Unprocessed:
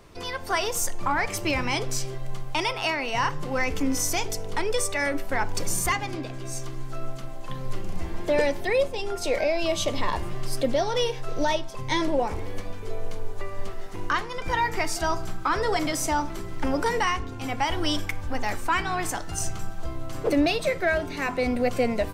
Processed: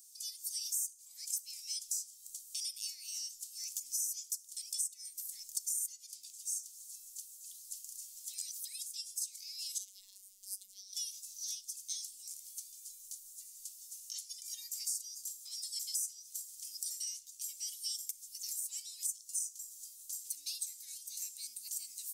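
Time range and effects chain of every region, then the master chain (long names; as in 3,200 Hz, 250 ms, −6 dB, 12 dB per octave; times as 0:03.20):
0:09.78–0:10.93: parametric band 8,000 Hz −11 dB 2.8 octaves + phases set to zero 195 Hz
whole clip: inverse Chebyshev high-pass filter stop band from 1,600 Hz, stop band 70 dB; downward compressor 5 to 1, threshold −47 dBFS; level +11 dB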